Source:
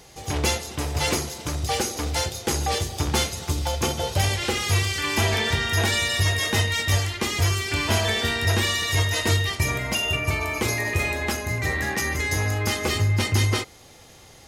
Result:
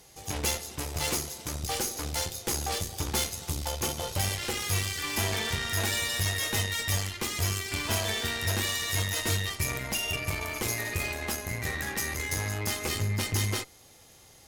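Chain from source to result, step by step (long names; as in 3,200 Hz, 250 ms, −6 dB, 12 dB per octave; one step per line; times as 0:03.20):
harmonic generator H 8 −20 dB, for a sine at −8.5 dBFS
high-shelf EQ 8,000 Hz +11 dB
level −8.5 dB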